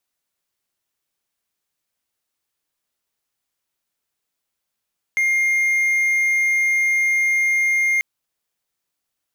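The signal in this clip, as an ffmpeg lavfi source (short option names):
-f lavfi -i "aevalsrc='0.211*(1-4*abs(mod(2120*t+0.25,1)-0.5))':d=2.84:s=44100"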